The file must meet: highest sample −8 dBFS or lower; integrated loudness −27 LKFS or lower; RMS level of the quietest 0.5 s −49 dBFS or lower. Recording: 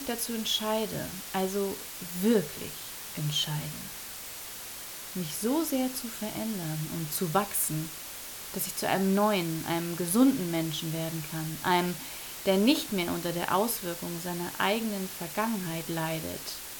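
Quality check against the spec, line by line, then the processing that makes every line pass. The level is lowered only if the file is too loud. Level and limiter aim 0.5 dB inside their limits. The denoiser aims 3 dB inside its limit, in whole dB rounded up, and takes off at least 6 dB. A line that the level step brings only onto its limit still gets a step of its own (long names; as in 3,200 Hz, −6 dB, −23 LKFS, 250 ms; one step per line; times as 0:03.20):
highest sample −9.5 dBFS: in spec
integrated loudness −30.0 LKFS: in spec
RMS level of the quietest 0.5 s −41 dBFS: out of spec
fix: broadband denoise 11 dB, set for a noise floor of −41 dBFS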